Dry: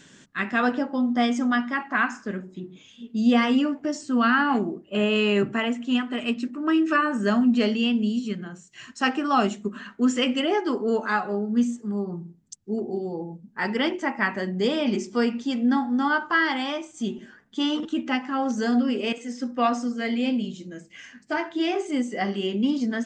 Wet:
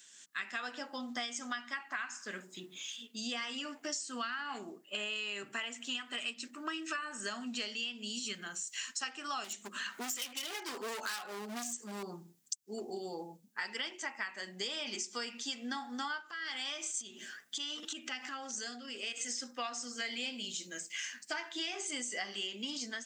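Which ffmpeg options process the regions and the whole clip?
-filter_complex "[0:a]asettb=1/sr,asplit=3[a][b][c];[a]atrim=end=9.444[d];[b]atrim=start=9.44:end=12.03,asetpts=PTS-STARTPTS,afade=t=in:d=0.004:c=qsin,afade=t=out:st=2.586:d=0.004:c=qsin,acompressor=mode=upward:threshold=-36dB:ratio=2.5:attack=3.2:release=140:knee=2.83:detection=peak,volume=26.5dB,asoftclip=hard,volume=-26.5dB[e];[c]atrim=start=12.026[f];[d][e]acrossfade=d=0.004:c1=hsin:c2=qsin[g];[g][f]acrossfade=d=0.004:c1=qsin:c2=hsin,asettb=1/sr,asplit=3[h][i][j];[h]atrim=end=16.214[k];[i]atrim=start=16.21:end=19.25,asetpts=PTS-STARTPTS,afade=t=in:d=0.004:c=qsin,afade=t=out:st=3.036:d=0.004:c=qsin,equalizer=f=950:t=o:w=0.24:g=-10.5,acompressor=threshold=-37dB:ratio=4:attack=3.2:release=140:knee=1:detection=peak[l];[j]atrim=start=19.246[m];[k][l]acrossfade=d=0.004:c1=hsin:c2=qsin[n];[n][m]acrossfade=d=0.004:c1=qsin:c2=hsin,dynaudnorm=f=110:g=5:m=15.5dB,aderivative,acompressor=threshold=-35dB:ratio=12"

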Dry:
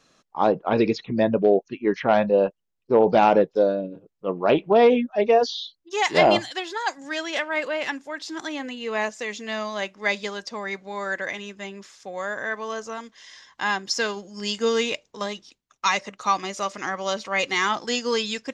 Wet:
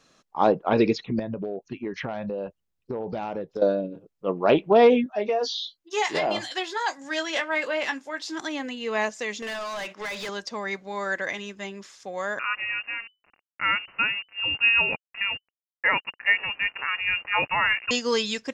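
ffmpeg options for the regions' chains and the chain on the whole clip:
-filter_complex "[0:a]asettb=1/sr,asplit=3[a][b][c];[a]atrim=end=1.194[d];[b]atrim=start=1.19:end=3.62,asetpts=PTS-STARTPTS,afade=t=in:d=0.004:c=qsin,afade=t=out:st=2.426:d=0.004:c=qsin,equalizer=f=79:t=o:w=1.7:g=10,acompressor=threshold=-27dB:ratio=10:attack=3.2:release=140:knee=1:detection=peak[e];[c]atrim=start=3.616[f];[d][e]acrossfade=d=0.004:c1=hsin:c2=qsin[g];[g][f]acrossfade=d=0.004:c1=qsin:c2=hsin,asettb=1/sr,asplit=3[h][i][j];[h]atrim=end=5.044[k];[i]atrim=start=5.04:end=8.38,asetpts=PTS-STARTPTS,afade=t=in:d=0.004:c=qsin,afade=t=out:st=3.336:d=0.004:c=qsin,acompressor=threshold=-20dB:ratio=10:attack=3.2:release=140:knee=1:detection=peak,lowshelf=f=170:g=-9.5,asplit=2[l][m];[m]adelay=19,volume=-8dB[n];[l][n]amix=inputs=2:normalize=0,atrim=end_sample=147294[o];[j]atrim=start=8.376[p];[k][o]acrossfade=d=0.004:c1=hsin:c2=qsin[q];[q][p]acrossfade=d=0.004:c1=qsin:c2=hsin,asettb=1/sr,asplit=3[r][s][t];[r]atrim=end=9.424[u];[s]atrim=start=9.42:end=10.29,asetpts=PTS-STARTPTS,afade=t=in:d=0.004:c=qsin,afade=t=out:st=0.866:d=0.004:c=qsin,agate=range=-33dB:threshold=-44dB:ratio=3:release=100:detection=peak,acompressor=threshold=-35dB:ratio=5:attack=3.2:release=140:knee=1:detection=peak,asplit=2[v][w];[w]highpass=f=720:p=1,volume=24dB,asoftclip=type=tanh:threshold=-25.5dB[x];[v][x]amix=inputs=2:normalize=0,lowpass=f=4.8k:p=1,volume=-6dB[y];[t]atrim=start=10.286[z];[u][y]acrossfade=d=0.004:c1=hsin:c2=qsin[aa];[aa][z]acrossfade=d=0.004:c1=qsin:c2=hsin,asettb=1/sr,asplit=3[ab][ac][ad];[ab]atrim=end=12.394[ae];[ac]atrim=start=12.39:end=17.91,asetpts=PTS-STARTPTS,afade=t=in:d=0.004:c=qsin,afade=t=out:st=5.516:d=0.004:c=qsin,aeval=exprs='val(0)*gte(abs(val(0)),0.0141)':c=same,lowshelf=f=150:t=q:w=3:g=-9,lowpass=f=2.6k:t=q:w=0.5098,lowpass=f=2.6k:t=q:w=0.6013,lowpass=f=2.6k:t=q:w=0.9,lowpass=f=2.6k:t=q:w=2.563,afreqshift=-3000[af];[ad]atrim=start=17.906[ag];[ae][af]acrossfade=d=0.004:c1=hsin:c2=qsin[ah];[ah][ag]acrossfade=d=0.004:c1=qsin:c2=hsin"

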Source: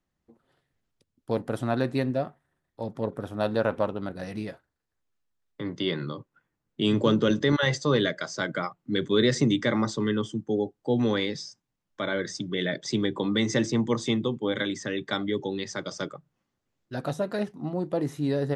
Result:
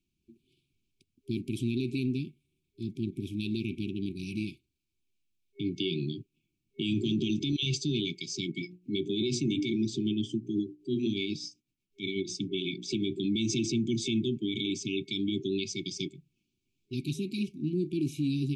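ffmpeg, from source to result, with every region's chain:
-filter_complex "[0:a]asettb=1/sr,asplit=3[a][b][c];[a]atrim=end=8.494[d];[b]atrim=start=8.49:end=13.08,asetpts=PTS-STARTPTS,afade=t=in:d=0.004:c=qsin,afade=t=out:st=4.586:d=0.004:c=qsin,equalizer=f=490:w=0.71:g=4.5,bandreject=f=60:t=h:w=6,bandreject=f=120:t=h:w=6,bandreject=f=180:t=h:w=6,bandreject=f=240:t=h:w=6,bandreject=f=300:t=h:w=6,bandreject=f=360:t=h:w=6,bandreject=f=420:t=h:w=6,bandreject=f=480:t=h:w=6,tremolo=f=8.1:d=0.61[e];[c]atrim=start=13.076[f];[d][e]acrossfade=d=0.004:c1=hsin:c2=qsin[g];[g][f]acrossfade=d=0.004:c1=qsin:c2=hsin,afftfilt=real='re*(1-between(b*sr/4096,400,2200))':imag='im*(1-between(b*sr/4096,400,2200))':win_size=4096:overlap=0.75,equalizer=f=1.3k:t=o:w=1.8:g=12.5,alimiter=limit=-21.5dB:level=0:latency=1:release=39"

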